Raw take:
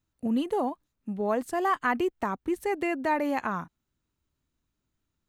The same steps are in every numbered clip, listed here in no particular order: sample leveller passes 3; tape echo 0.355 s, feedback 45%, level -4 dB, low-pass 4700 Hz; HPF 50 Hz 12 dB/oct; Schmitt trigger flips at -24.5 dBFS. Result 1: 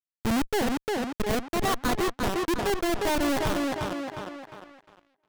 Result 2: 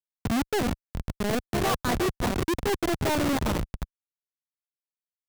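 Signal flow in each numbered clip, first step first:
HPF > Schmitt trigger > tape echo > sample leveller; tape echo > Schmitt trigger > HPF > sample leveller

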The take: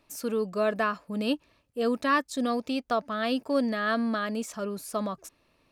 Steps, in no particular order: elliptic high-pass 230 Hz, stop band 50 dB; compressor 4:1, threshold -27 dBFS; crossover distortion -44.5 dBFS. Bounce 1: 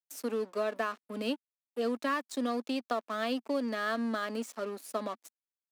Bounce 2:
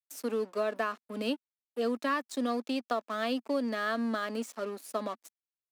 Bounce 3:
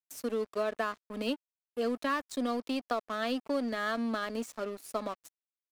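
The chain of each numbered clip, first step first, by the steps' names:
compressor > crossover distortion > elliptic high-pass; crossover distortion > elliptic high-pass > compressor; elliptic high-pass > compressor > crossover distortion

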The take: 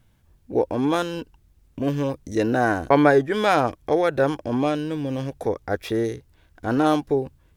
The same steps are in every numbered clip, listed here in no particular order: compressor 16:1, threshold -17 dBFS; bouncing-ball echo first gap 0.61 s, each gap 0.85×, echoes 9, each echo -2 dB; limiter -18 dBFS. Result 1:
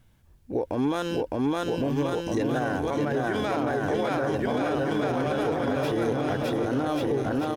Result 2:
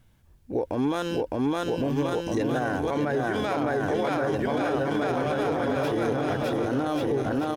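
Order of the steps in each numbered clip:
compressor > bouncing-ball echo > limiter; bouncing-ball echo > limiter > compressor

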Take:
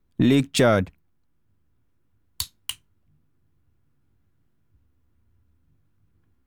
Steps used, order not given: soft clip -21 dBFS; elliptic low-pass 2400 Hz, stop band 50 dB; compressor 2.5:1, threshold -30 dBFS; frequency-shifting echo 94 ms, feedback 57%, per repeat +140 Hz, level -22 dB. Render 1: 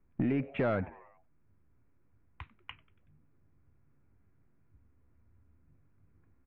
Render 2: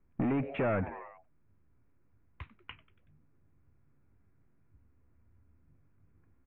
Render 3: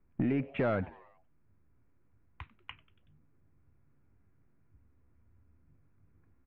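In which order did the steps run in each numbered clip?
compressor > frequency-shifting echo > elliptic low-pass > soft clip; frequency-shifting echo > soft clip > compressor > elliptic low-pass; compressor > elliptic low-pass > soft clip > frequency-shifting echo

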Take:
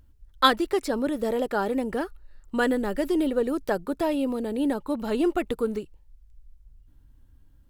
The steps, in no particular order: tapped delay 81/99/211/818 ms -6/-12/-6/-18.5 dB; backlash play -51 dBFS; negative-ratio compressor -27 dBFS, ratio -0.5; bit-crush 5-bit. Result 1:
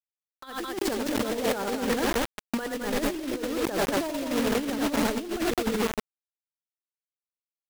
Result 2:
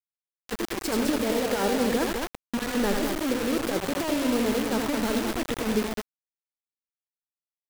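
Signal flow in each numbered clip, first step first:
tapped delay > backlash > bit-crush > negative-ratio compressor; backlash > negative-ratio compressor > tapped delay > bit-crush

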